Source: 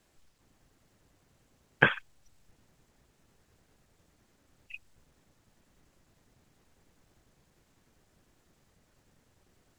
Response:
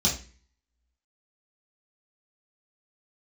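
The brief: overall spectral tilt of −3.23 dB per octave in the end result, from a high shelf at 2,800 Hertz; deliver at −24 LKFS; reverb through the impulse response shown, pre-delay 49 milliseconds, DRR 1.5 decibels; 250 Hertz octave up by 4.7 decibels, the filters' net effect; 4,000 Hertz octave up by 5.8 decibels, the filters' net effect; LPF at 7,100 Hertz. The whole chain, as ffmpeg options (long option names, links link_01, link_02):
-filter_complex "[0:a]lowpass=7100,equalizer=frequency=250:width_type=o:gain=6.5,highshelf=frequency=2800:gain=3,equalizer=frequency=4000:width_type=o:gain=6,asplit=2[link_01][link_02];[1:a]atrim=start_sample=2205,adelay=49[link_03];[link_02][link_03]afir=irnorm=-1:irlink=0,volume=-12dB[link_04];[link_01][link_04]amix=inputs=2:normalize=0,volume=1.5dB"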